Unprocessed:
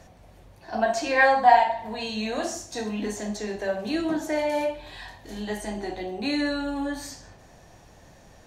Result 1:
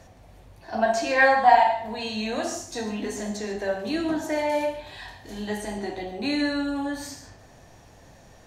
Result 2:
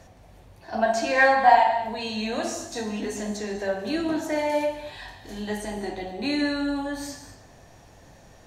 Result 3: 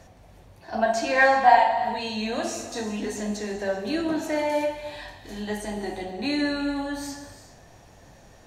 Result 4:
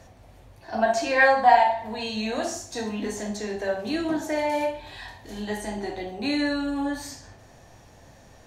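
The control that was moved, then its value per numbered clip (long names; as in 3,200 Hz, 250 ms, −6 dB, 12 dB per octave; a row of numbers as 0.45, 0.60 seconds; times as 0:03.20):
reverb whose tail is shaped and stops, gate: 170, 270, 420, 80 milliseconds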